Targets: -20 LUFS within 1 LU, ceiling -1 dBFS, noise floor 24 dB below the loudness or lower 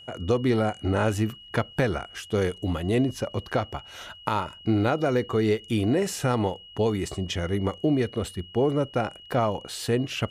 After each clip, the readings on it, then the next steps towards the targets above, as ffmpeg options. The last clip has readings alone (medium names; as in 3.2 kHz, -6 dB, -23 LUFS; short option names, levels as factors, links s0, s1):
steady tone 2.9 kHz; tone level -45 dBFS; loudness -26.5 LUFS; peak level -9.5 dBFS; loudness target -20.0 LUFS
-> -af "bandreject=f=2900:w=30"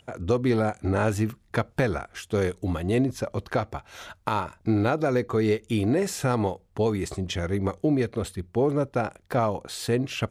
steady tone not found; loudness -26.5 LUFS; peak level -9.5 dBFS; loudness target -20.0 LUFS
-> -af "volume=2.11"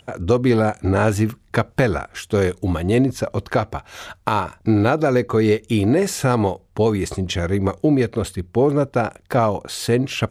loudness -20.0 LUFS; peak level -3.0 dBFS; noise floor -54 dBFS